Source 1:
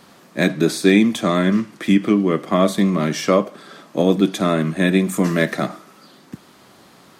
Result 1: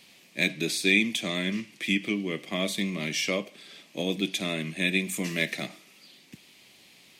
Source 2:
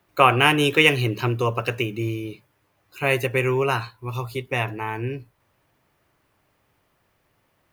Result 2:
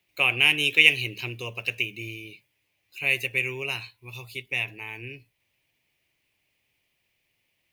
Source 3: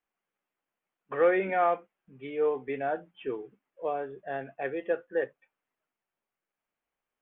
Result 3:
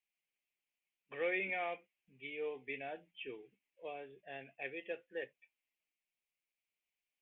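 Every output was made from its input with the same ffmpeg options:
-af "highshelf=f=1.8k:t=q:w=3:g=9.5,volume=-13.5dB"

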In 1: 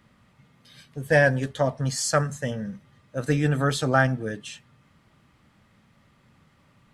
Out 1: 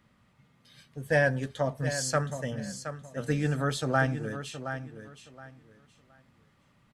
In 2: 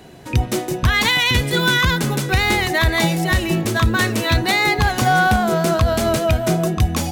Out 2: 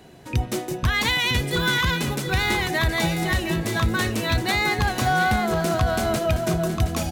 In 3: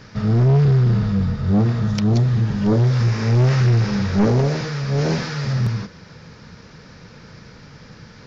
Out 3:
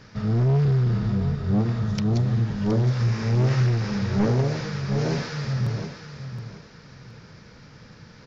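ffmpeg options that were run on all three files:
-af "aecho=1:1:720|1440|2160:0.316|0.0727|0.0167,volume=-5.5dB"

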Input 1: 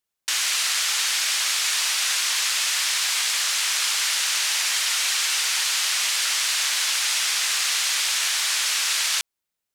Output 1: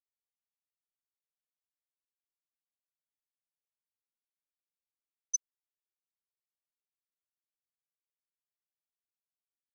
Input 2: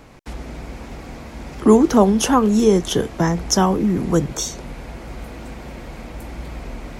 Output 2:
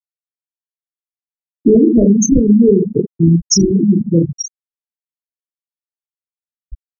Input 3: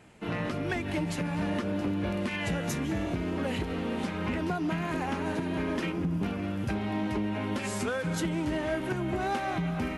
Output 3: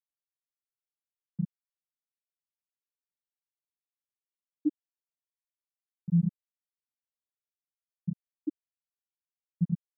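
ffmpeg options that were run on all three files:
-filter_complex "[0:a]asplit=2[a][b];[b]adelay=110.8,volume=-28dB,highshelf=f=4k:g=-2.49[c];[a][c]amix=inputs=2:normalize=0,acrossover=split=570|3400[d][e][f];[e]acrusher=samples=41:mix=1:aa=0.000001[g];[f]crystalizer=i=2:c=0[h];[d][g][h]amix=inputs=3:normalize=0,asoftclip=type=hard:threshold=-2.5dB,asplit=2[i][j];[j]aecho=0:1:30|72|130.8|213.1|328.4:0.631|0.398|0.251|0.158|0.1[k];[i][k]amix=inputs=2:normalize=0,afftfilt=real='re*gte(hypot(re,im),0.708)':imag='im*gte(hypot(re,im),0.708)':win_size=1024:overlap=0.75,alimiter=level_in=7dB:limit=-1dB:release=50:level=0:latency=1,volume=-1dB"

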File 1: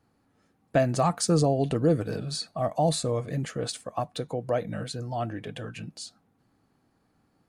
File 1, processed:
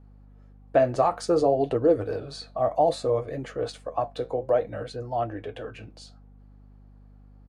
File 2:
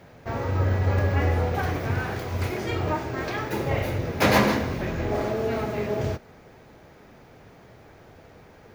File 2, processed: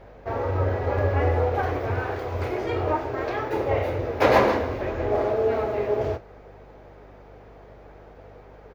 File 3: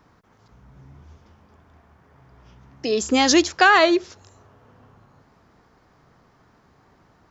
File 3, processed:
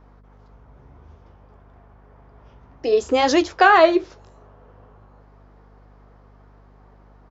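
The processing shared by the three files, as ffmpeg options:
-af "firequalizer=gain_entry='entry(110,0);entry(160,-14);entry(270,0);entry(450,7);entry(1700,0);entry(8000,-11)':delay=0.05:min_phase=1,flanger=delay=7.3:depth=9.3:regen=-58:speed=0.59:shape=triangular,aeval=exprs='val(0)+0.00251*(sin(2*PI*50*n/s)+sin(2*PI*2*50*n/s)/2+sin(2*PI*3*50*n/s)/3+sin(2*PI*4*50*n/s)/4+sin(2*PI*5*50*n/s)/5)':c=same,volume=2.5dB"

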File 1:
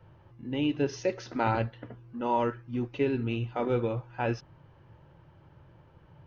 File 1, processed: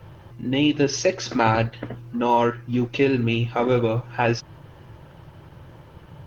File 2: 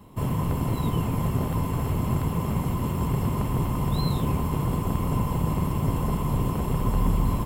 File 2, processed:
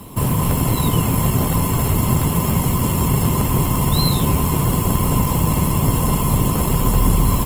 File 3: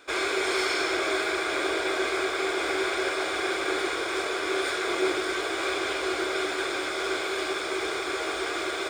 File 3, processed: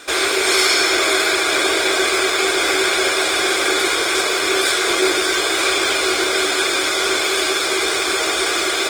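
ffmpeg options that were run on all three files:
-filter_complex "[0:a]highshelf=f=3.3k:g=12,asplit=2[a][b];[b]acompressor=threshold=-35dB:ratio=6,volume=1dB[c];[a][c]amix=inputs=2:normalize=0,volume=5.5dB" -ar 48000 -c:a libopus -b:a 20k

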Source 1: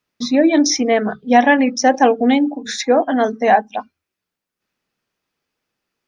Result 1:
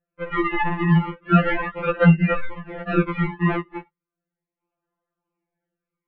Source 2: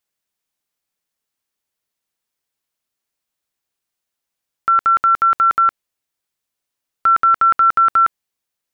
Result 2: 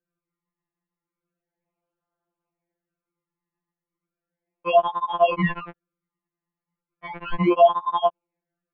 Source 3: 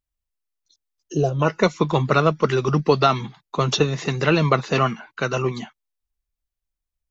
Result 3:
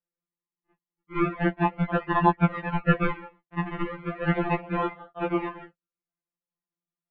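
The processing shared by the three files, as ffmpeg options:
-af "acrusher=samples=34:mix=1:aa=0.000001:lfo=1:lforange=34:lforate=0.35,highpass=f=400:t=q:w=0.5412,highpass=f=400:t=q:w=1.307,lowpass=f=2.7k:t=q:w=0.5176,lowpass=f=2.7k:t=q:w=0.7071,lowpass=f=2.7k:t=q:w=1.932,afreqshift=-290,afftfilt=real='re*2.83*eq(mod(b,8),0)':imag='im*2.83*eq(mod(b,8),0)':win_size=2048:overlap=0.75"

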